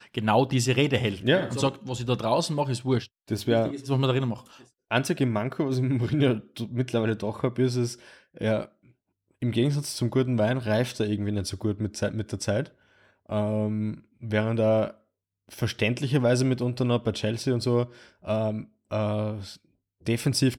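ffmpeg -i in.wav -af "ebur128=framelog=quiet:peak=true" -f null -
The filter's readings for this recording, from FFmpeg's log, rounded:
Integrated loudness:
  I:         -26.7 LUFS
  Threshold: -37.1 LUFS
Loudness range:
  LRA:         3.1 LU
  Threshold: -47.4 LUFS
  LRA low:   -29.1 LUFS
  LRA high:  -26.1 LUFS
True peak:
  Peak:       -9.5 dBFS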